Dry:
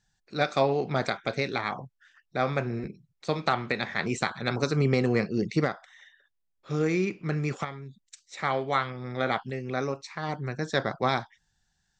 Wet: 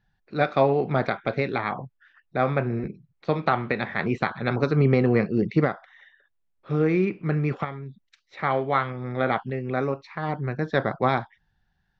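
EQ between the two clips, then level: distance through air 290 m; treble shelf 6.5 kHz -8.5 dB; +5.0 dB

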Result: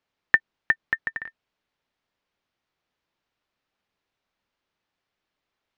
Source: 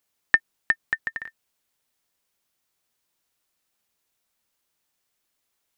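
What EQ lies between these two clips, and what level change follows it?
distance through air 220 m; +2.5 dB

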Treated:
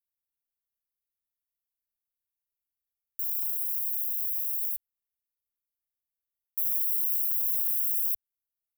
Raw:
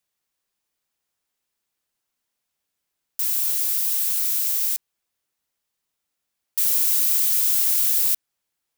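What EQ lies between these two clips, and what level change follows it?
inverse Chebyshev band-stop 330–3400 Hz, stop band 70 dB; -7.0 dB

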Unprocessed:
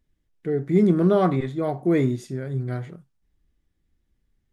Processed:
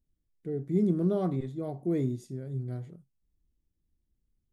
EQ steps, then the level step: peaking EQ 1.7 kHz -13 dB 2.5 oct; -6.5 dB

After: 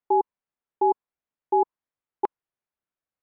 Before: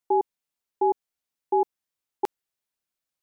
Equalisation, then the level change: low-pass 1.8 kHz 12 dB/octave; dynamic bell 1 kHz, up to +8 dB, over -44 dBFS, Q 4.2; 0.0 dB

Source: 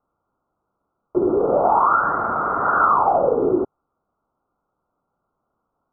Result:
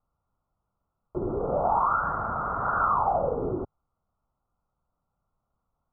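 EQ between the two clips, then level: low-pass 1.1 kHz 6 dB/octave; tilt EQ -2 dB/octave; peaking EQ 340 Hz -13.5 dB 1.6 oct; -2.0 dB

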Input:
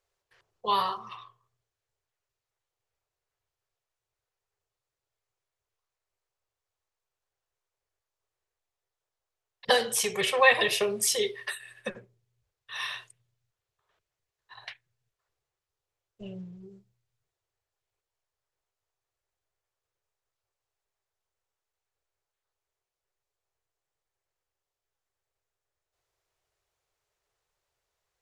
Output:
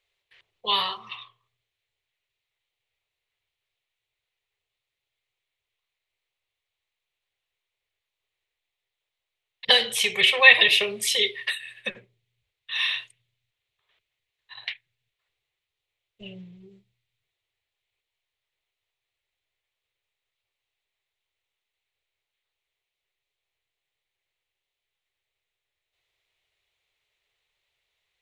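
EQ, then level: high-order bell 2.8 kHz +13.5 dB 1.3 oct; -2.0 dB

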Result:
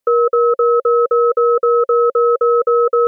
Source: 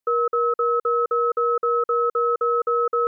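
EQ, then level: dynamic bell 930 Hz, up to -4 dB, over -33 dBFS, Q 1; peaking EQ 540 Hz +10.5 dB 0.3 oct; +7.0 dB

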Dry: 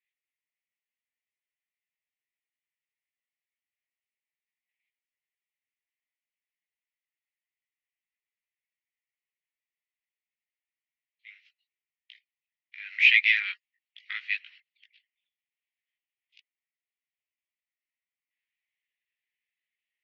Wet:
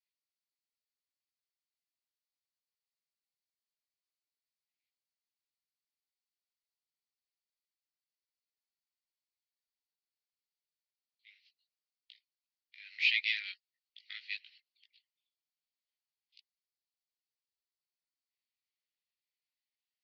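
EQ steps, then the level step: band-pass filter 4.5 kHz, Q 5.4; +6.5 dB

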